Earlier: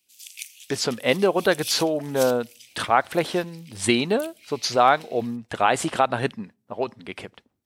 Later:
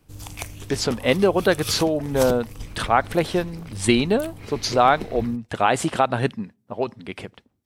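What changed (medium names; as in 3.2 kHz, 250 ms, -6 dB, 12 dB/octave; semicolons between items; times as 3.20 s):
background: remove steep high-pass 2.4 kHz 36 dB/octave; master: add bass shelf 250 Hz +7 dB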